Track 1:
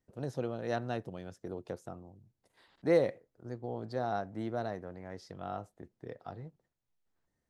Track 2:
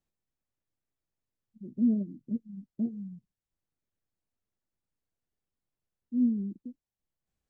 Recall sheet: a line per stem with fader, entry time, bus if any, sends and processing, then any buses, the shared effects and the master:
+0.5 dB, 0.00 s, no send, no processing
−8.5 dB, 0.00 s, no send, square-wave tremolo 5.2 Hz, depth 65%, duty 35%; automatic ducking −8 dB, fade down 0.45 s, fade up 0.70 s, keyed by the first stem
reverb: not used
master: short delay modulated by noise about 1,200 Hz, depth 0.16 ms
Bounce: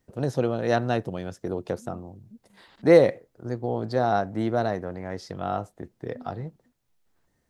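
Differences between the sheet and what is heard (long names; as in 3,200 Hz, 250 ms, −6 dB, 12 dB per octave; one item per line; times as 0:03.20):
stem 1 +0.5 dB → +11.0 dB
master: missing short delay modulated by noise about 1,200 Hz, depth 0.16 ms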